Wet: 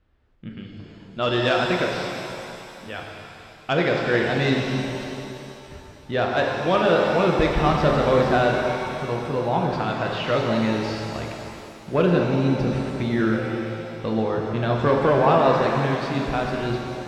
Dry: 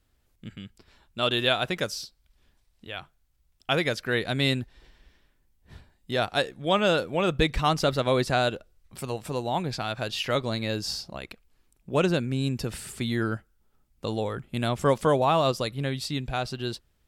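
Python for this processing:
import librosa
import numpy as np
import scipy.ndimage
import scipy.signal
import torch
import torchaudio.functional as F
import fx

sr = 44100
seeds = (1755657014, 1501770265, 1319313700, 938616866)

y = scipy.signal.sosfilt(scipy.signal.butter(2, 2300.0, 'lowpass', fs=sr, output='sos'), x)
y = fx.cheby_harmonics(y, sr, harmonics=(5,), levels_db=(-19,), full_scale_db=-8.5)
y = fx.rev_shimmer(y, sr, seeds[0], rt60_s=2.8, semitones=7, shimmer_db=-8, drr_db=0.0)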